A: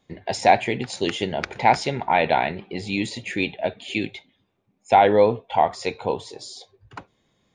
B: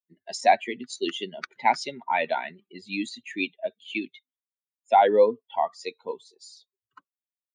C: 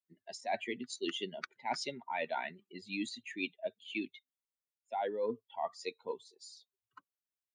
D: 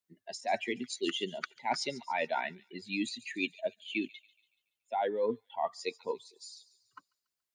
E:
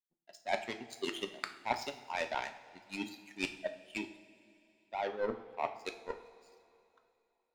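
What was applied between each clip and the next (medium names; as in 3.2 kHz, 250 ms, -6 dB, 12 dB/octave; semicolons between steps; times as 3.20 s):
expander on every frequency bin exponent 2; high-pass 240 Hz 24 dB/octave
peaking EQ 110 Hz +6 dB 0.35 oct; reverse; compression 16:1, threshold -27 dBFS, peak gain reduction 15.5 dB; reverse; trim -5 dB
feedback echo behind a high-pass 142 ms, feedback 46%, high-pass 3.7 kHz, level -14.5 dB; trim +4 dB
power-law waveshaper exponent 2; on a send at -6 dB: reverberation, pre-delay 3 ms; on the sum: trim +4 dB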